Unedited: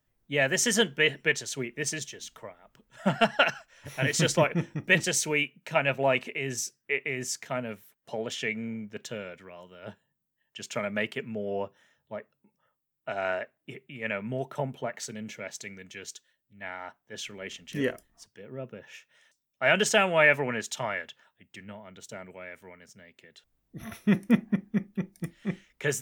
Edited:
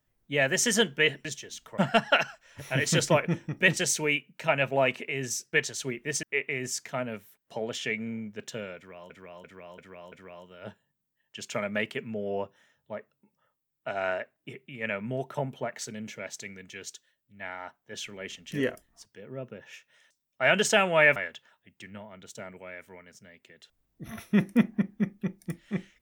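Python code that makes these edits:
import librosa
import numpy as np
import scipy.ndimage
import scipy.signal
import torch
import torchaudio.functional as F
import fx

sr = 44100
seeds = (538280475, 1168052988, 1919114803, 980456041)

y = fx.edit(x, sr, fx.move(start_s=1.25, length_s=0.7, to_s=6.8),
    fx.cut(start_s=2.48, length_s=0.57),
    fx.repeat(start_s=9.33, length_s=0.34, count=5),
    fx.cut(start_s=20.37, length_s=0.53), tone=tone)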